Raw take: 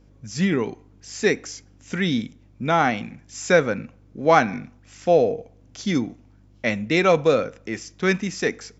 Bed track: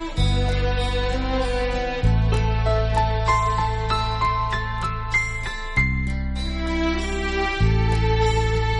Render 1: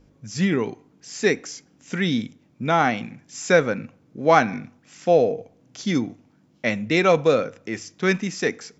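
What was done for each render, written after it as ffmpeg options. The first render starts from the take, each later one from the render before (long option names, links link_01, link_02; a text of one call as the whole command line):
ffmpeg -i in.wav -af "bandreject=frequency=50:width_type=h:width=4,bandreject=frequency=100:width_type=h:width=4" out.wav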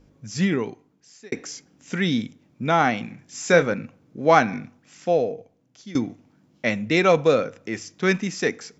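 ffmpeg -i in.wav -filter_complex "[0:a]asettb=1/sr,asplit=3[link_01][link_02][link_03];[link_01]atrim=end=3.064[link_04];[link_02]atrim=start=3.06:end=3.74,asetpts=PTS-STARTPTS,afade=type=in:duration=0.004:curve=qsin,afade=type=out:start_time=0.676:duration=0.004:curve=qsin,asplit=2[link_05][link_06];[link_06]adelay=29,volume=-9.5dB[link_07];[link_05][link_07]amix=inputs=2:normalize=0,atrim=end_sample=29988[link_08];[link_03]atrim=start=3.736[link_09];[link_04][link_08]acrossfade=duration=0.004:curve1=hsin:curve2=qsin[link_10];[link_10][link_09]acrossfade=duration=0.004:curve1=qsin:curve2=hsin,asplit=3[link_11][link_12][link_13];[link_11]atrim=end=1.32,asetpts=PTS-STARTPTS,afade=type=out:start_time=0.41:duration=0.91[link_14];[link_12]atrim=start=1.32:end=5.95,asetpts=PTS-STARTPTS,afade=type=in:duration=0.004:curve=hsin,afade=type=out:start_time=3.29:duration=1.34:silence=0.141254[link_15];[link_13]atrim=start=5.95,asetpts=PTS-STARTPTS,afade=type=in:duration=0.004:curve=hsin:silence=0.141254[link_16];[link_14][link_15][link_16]concat=n=3:v=0:a=1" out.wav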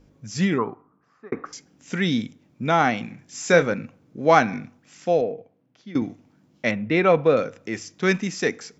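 ffmpeg -i in.wav -filter_complex "[0:a]asettb=1/sr,asplit=3[link_01][link_02][link_03];[link_01]atrim=end=0.584[link_04];[link_02]atrim=start=0.58:end=1.53,asetpts=PTS-STARTPTS,afade=type=in:duration=0.004:curve=qsin,afade=type=out:start_time=0.946:duration=0.004:curve=qsin,lowpass=frequency=1200:width_type=q:width=9.4[link_05];[link_03]atrim=start=1.526[link_06];[link_04][link_05]acrossfade=duration=0.004:curve1=hsin:curve2=qsin[link_07];[link_07][link_06]acrossfade=duration=0.004:curve1=qsin:curve2=hsin,asettb=1/sr,asplit=3[link_08][link_09][link_10];[link_08]atrim=end=5.214[link_11];[link_09]atrim=start=5.21:end=6.02,asetpts=PTS-STARTPTS,afade=type=in:duration=0.004:curve=qsin,afade=type=out:start_time=0.806:duration=0.004:curve=qsin,highpass=110,lowpass=2900[link_12];[link_10]atrim=start=6.016[link_13];[link_11][link_12]acrossfade=duration=0.004:curve1=hsin:curve2=qsin[link_14];[link_14][link_13]acrossfade=duration=0.004:curve1=qsin:curve2=hsin,asettb=1/sr,asplit=3[link_15][link_16][link_17];[link_15]atrim=end=6.714[link_18];[link_16]atrim=start=6.71:end=7.37,asetpts=PTS-STARTPTS,afade=type=in:duration=0.004:curve=qsin,afade=type=out:start_time=0.656:duration=0.004:curve=qsin,lowpass=2500[link_19];[link_17]atrim=start=7.366[link_20];[link_18][link_19]acrossfade=duration=0.004:curve1=hsin:curve2=qsin[link_21];[link_21][link_20]acrossfade=duration=0.004:curve1=qsin:curve2=hsin" out.wav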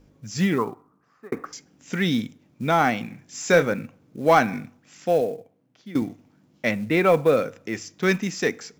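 ffmpeg -i in.wav -af "acrusher=bits=7:mode=log:mix=0:aa=0.000001,asoftclip=type=tanh:threshold=-4.5dB" out.wav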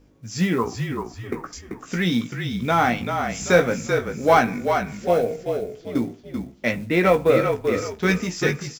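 ffmpeg -i in.wav -filter_complex "[0:a]asplit=2[link_01][link_02];[link_02]adelay=17,volume=-6.5dB[link_03];[link_01][link_03]amix=inputs=2:normalize=0,asplit=5[link_04][link_05][link_06][link_07][link_08];[link_05]adelay=387,afreqshift=-38,volume=-6dB[link_09];[link_06]adelay=774,afreqshift=-76,volume=-15.1dB[link_10];[link_07]adelay=1161,afreqshift=-114,volume=-24.2dB[link_11];[link_08]adelay=1548,afreqshift=-152,volume=-33.4dB[link_12];[link_04][link_09][link_10][link_11][link_12]amix=inputs=5:normalize=0" out.wav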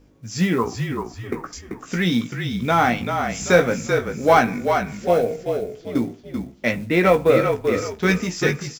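ffmpeg -i in.wav -af "volume=1.5dB,alimiter=limit=-3dB:level=0:latency=1" out.wav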